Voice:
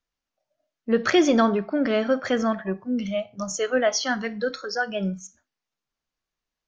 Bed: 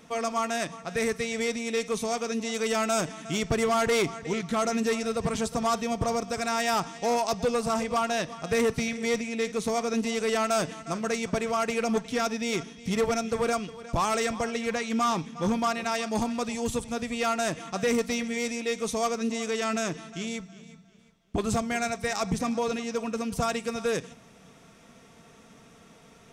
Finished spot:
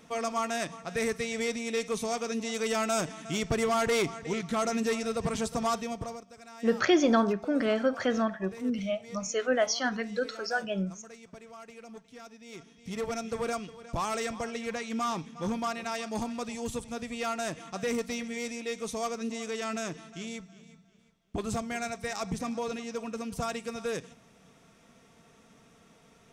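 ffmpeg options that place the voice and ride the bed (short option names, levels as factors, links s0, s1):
-filter_complex "[0:a]adelay=5750,volume=0.596[s0];[1:a]volume=4.22,afade=t=out:st=5.67:d=0.58:silence=0.125893,afade=t=in:st=12.44:d=0.86:silence=0.177828[s1];[s0][s1]amix=inputs=2:normalize=0"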